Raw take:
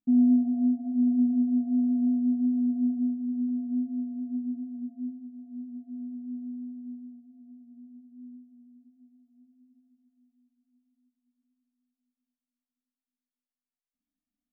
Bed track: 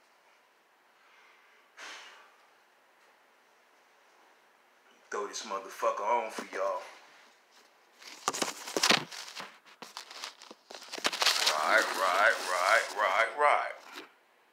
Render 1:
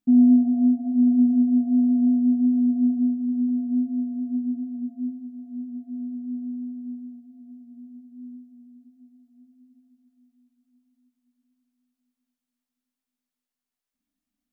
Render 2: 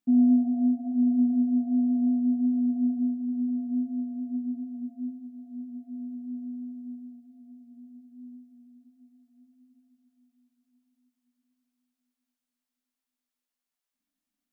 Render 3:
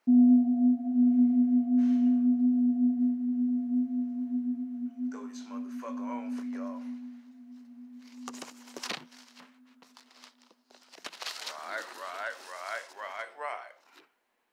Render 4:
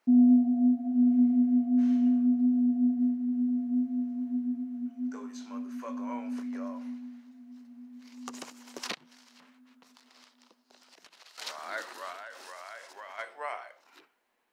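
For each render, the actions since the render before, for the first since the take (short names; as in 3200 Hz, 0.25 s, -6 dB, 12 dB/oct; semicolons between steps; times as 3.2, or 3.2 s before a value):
gain +5.5 dB
low shelf 240 Hz -10 dB
add bed track -12 dB
8.94–11.38 compressor 5:1, threshold -53 dBFS; 12.12–13.18 compressor, threshold -40 dBFS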